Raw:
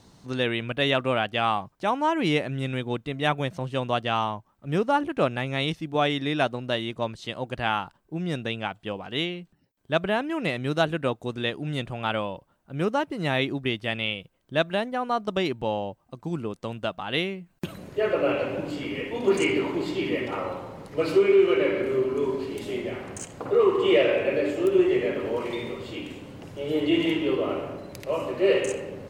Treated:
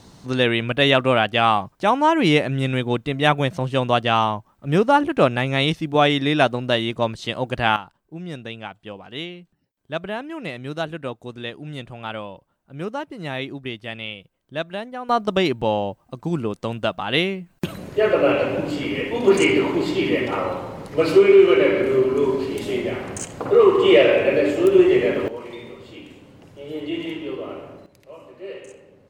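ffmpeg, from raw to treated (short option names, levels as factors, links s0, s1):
-af "asetnsamples=n=441:p=0,asendcmd='7.76 volume volume -3.5dB;15.09 volume volume 6.5dB;25.28 volume volume -5dB;27.86 volume volume -14dB',volume=2.24"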